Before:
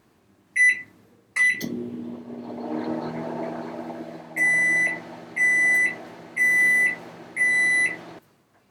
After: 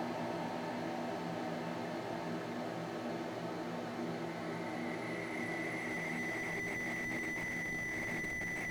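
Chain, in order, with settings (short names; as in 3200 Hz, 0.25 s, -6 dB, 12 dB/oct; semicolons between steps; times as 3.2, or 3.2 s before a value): Paulstretch 44×, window 0.25 s, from 5.17; slew limiter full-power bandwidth 19 Hz; gain +1 dB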